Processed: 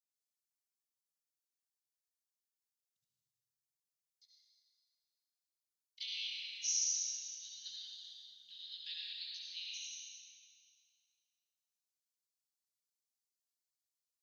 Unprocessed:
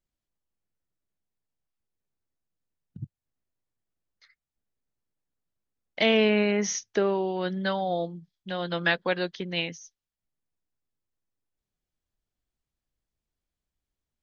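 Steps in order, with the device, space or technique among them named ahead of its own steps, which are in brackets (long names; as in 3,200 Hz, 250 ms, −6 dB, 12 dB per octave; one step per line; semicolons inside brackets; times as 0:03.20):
stairwell (convolution reverb RT60 2.3 s, pre-delay 63 ms, DRR −4.5 dB)
inverse Chebyshev high-pass filter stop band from 1,300 Hz, stop band 60 dB
0:07.99–0:08.77: double-tracking delay 42 ms −4 dB
level −4 dB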